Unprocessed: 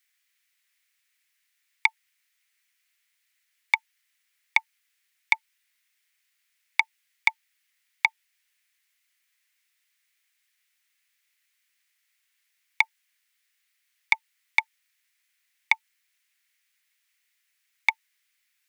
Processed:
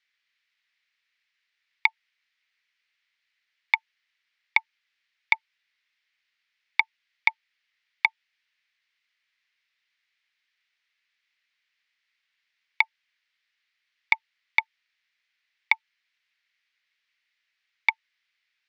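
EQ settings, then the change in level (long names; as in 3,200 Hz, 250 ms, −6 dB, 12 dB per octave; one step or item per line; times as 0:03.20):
low-pass filter 4,700 Hz 24 dB per octave
0.0 dB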